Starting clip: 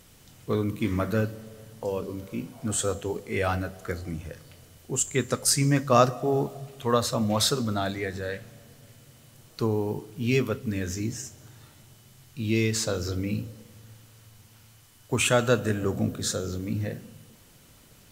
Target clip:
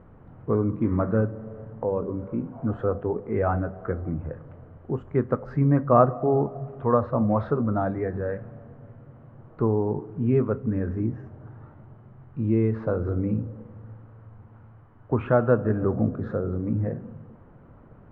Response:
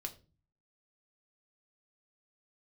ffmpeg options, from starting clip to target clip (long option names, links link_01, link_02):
-filter_complex "[0:a]lowpass=frequency=1300:width=0.5412,lowpass=frequency=1300:width=1.3066,asplit=2[link_01][link_02];[link_02]acompressor=threshold=-36dB:ratio=6,volume=-1dB[link_03];[link_01][link_03]amix=inputs=2:normalize=0,volume=1.5dB"